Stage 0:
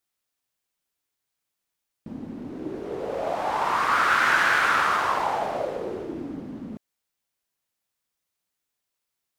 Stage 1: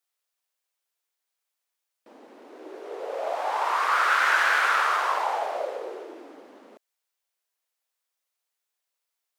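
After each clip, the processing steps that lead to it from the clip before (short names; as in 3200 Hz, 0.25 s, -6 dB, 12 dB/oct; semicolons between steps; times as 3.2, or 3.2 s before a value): HPF 440 Hz 24 dB/oct; gain -1 dB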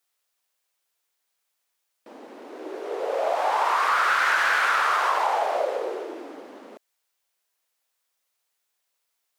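soft clip -12.5 dBFS, distortion -23 dB; compressor 4:1, threshold -25 dBFS, peak gain reduction 6 dB; gain +6 dB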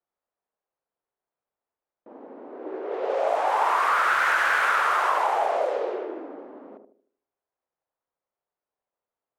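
dynamic EQ 4600 Hz, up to -6 dB, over -43 dBFS, Q 1.1; low-pass opened by the level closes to 870 Hz, open at -19 dBFS; narrowing echo 76 ms, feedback 43%, band-pass 350 Hz, level -5 dB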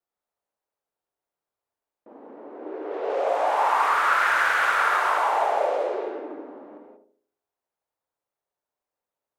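non-linear reverb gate 0.21 s rising, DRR 2 dB; gain -1.5 dB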